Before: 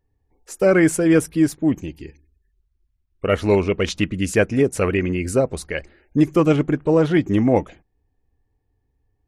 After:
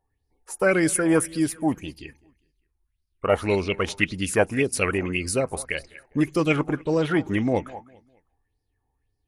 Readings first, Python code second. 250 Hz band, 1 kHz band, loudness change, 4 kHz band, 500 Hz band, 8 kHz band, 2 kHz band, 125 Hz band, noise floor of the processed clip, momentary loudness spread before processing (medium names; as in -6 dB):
-6.0 dB, -1.5 dB, -4.5 dB, -1.0 dB, -5.0 dB, +2.0 dB, 0.0 dB, -6.5 dB, -76 dBFS, 10 LU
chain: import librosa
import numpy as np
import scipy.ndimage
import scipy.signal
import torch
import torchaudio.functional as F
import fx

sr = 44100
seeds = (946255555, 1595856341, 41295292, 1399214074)

y = fx.peak_eq(x, sr, hz=9900.0, db=13.5, octaves=0.3)
y = fx.echo_feedback(y, sr, ms=202, feedback_pct=38, wet_db=-22)
y = fx.bell_lfo(y, sr, hz=1.8, low_hz=790.0, high_hz=5000.0, db=17)
y = y * 10.0 ** (-6.5 / 20.0)